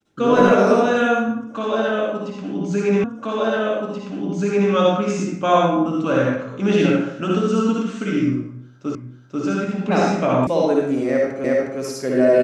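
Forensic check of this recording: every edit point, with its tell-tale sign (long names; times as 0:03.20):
0:03.04: the same again, the last 1.68 s
0:08.95: the same again, the last 0.49 s
0:10.47: cut off before it has died away
0:11.44: the same again, the last 0.36 s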